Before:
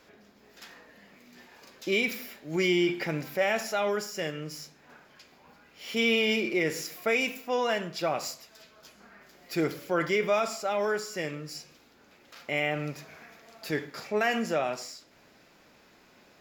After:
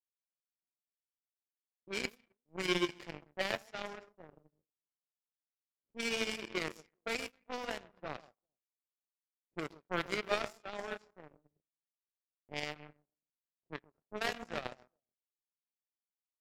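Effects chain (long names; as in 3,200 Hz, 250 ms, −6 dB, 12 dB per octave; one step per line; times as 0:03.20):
delay that swaps between a low-pass and a high-pass 133 ms, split 960 Hz, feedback 55%, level −6 dB
power curve on the samples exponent 3
low-pass that shuts in the quiet parts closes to 390 Hz, open at −36 dBFS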